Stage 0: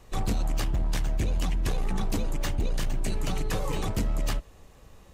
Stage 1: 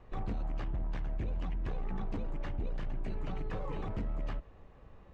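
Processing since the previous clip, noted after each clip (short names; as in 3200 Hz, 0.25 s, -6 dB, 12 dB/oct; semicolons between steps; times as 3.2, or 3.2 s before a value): limiter -27 dBFS, peak gain reduction 6 dB; LPF 2000 Hz 12 dB/oct; gain -3 dB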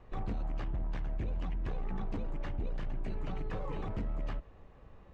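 nothing audible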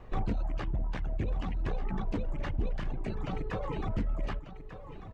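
reverb removal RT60 1.2 s; echo 1.192 s -12 dB; gain +6.5 dB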